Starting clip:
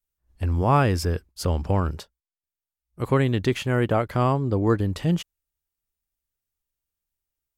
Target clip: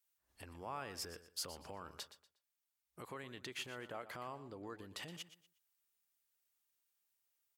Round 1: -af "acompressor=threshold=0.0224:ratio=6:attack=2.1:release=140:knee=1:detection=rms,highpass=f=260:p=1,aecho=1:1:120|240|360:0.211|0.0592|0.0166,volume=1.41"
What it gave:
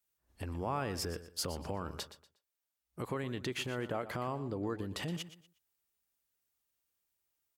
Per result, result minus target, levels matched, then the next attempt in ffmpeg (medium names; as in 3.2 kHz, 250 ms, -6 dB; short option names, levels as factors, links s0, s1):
250 Hz band +5.0 dB; compression: peak gain reduction -5 dB
-af "acompressor=threshold=0.0224:ratio=6:attack=2.1:release=140:knee=1:detection=rms,highpass=f=980:p=1,aecho=1:1:120|240|360:0.211|0.0592|0.0166,volume=1.41"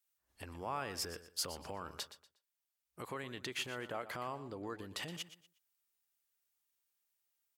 compression: peak gain reduction -5 dB
-af "acompressor=threshold=0.0112:ratio=6:attack=2.1:release=140:knee=1:detection=rms,highpass=f=980:p=1,aecho=1:1:120|240|360:0.211|0.0592|0.0166,volume=1.41"